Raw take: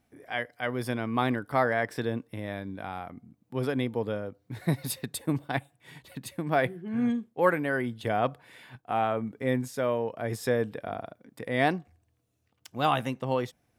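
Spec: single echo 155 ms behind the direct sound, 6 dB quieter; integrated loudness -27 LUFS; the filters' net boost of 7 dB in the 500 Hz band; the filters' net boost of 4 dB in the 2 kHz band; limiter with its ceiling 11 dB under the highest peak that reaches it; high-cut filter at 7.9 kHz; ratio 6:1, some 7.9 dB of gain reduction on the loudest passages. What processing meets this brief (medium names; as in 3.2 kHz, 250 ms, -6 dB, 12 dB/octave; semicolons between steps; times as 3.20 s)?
low-pass 7.9 kHz; peaking EQ 500 Hz +8 dB; peaking EQ 2 kHz +4.5 dB; compression 6:1, threshold -21 dBFS; peak limiter -21 dBFS; delay 155 ms -6 dB; trim +5 dB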